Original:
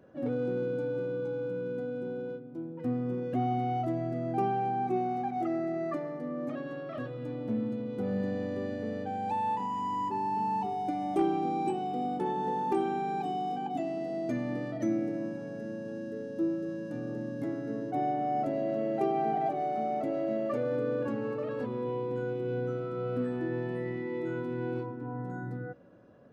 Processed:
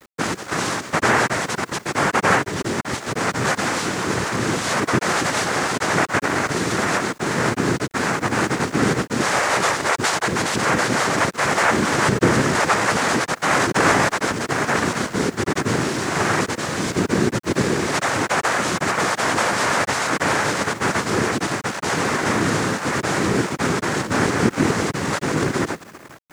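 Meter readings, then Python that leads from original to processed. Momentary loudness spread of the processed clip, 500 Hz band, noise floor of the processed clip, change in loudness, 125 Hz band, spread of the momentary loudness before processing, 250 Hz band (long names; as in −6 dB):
5 LU, +9.0 dB, −40 dBFS, +12.5 dB, +13.0 dB, 8 LU, +10.0 dB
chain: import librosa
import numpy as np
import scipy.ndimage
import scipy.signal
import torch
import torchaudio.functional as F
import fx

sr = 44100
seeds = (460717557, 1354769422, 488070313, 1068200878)

p1 = fx.spec_dropout(x, sr, seeds[0], share_pct=33)
p2 = fx.rider(p1, sr, range_db=3, speed_s=2.0)
p3 = p1 + (p2 * librosa.db_to_amplitude(0.0))
p4 = fx.sample_hold(p3, sr, seeds[1], rate_hz=1900.0, jitter_pct=0)
p5 = fx.fuzz(p4, sr, gain_db=42.0, gate_db=-46.0)
p6 = fx.chorus_voices(p5, sr, voices=6, hz=0.15, base_ms=12, depth_ms=1.9, mix_pct=60)
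p7 = fx.noise_vocoder(p6, sr, seeds[2], bands=3)
p8 = fx.quant_dither(p7, sr, seeds[3], bits=8, dither='none')
y = p8 * librosa.db_to_amplitude(-2.0)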